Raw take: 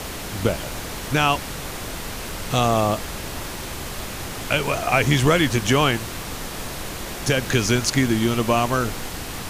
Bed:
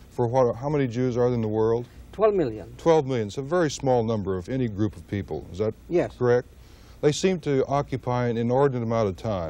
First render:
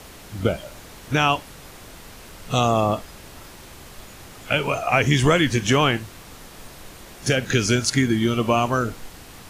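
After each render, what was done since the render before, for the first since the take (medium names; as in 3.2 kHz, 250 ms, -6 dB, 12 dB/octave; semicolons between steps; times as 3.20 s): noise print and reduce 11 dB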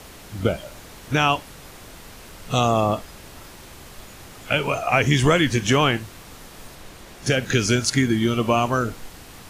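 6.75–7.33 s: treble shelf 8.9 kHz -5.5 dB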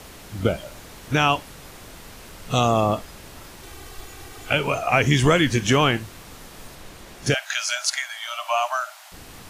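3.63–4.53 s: comb 2.6 ms; 7.34–9.12 s: Chebyshev high-pass 600 Hz, order 10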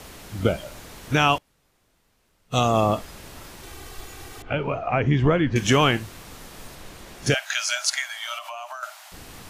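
1.38–2.74 s: upward expansion 2.5:1, over -34 dBFS; 4.42–5.56 s: tape spacing loss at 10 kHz 40 dB; 8.38–8.83 s: compression 8:1, threshold -32 dBFS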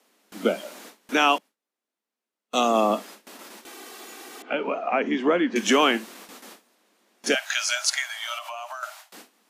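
steep high-pass 200 Hz 72 dB/octave; gate with hold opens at -32 dBFS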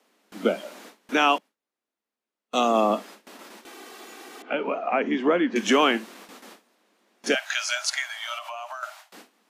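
treble shelf 5.5 kHz -7 dB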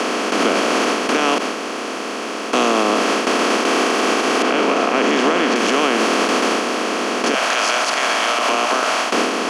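spectral levelling over time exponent 0.2; peak limiter -7 dBFS, peak gain reduction 7 dB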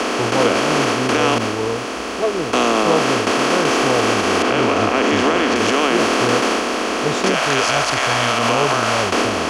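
add bed -0.5 dB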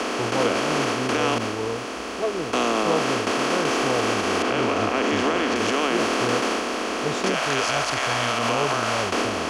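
trim -6 dB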